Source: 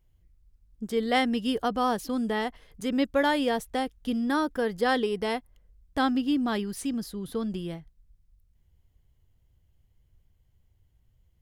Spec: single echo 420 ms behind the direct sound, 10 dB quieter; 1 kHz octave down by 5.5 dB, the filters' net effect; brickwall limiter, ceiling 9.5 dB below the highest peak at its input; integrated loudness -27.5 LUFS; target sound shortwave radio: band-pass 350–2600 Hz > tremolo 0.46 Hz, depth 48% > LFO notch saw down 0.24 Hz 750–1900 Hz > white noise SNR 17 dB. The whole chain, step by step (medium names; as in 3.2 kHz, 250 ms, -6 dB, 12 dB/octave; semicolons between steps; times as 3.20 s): peaking EQ 1 kHz -7.5 dB; peak limiter -23 dBFS; band-pass 350–2600 Hz; delay 420 ms -10 dB; tremolo 0.46 Hz, depth 48%; LFO notch saw down 0.24 Hz 750–1900 Hz; white noise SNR 17 dB; trim +13 dB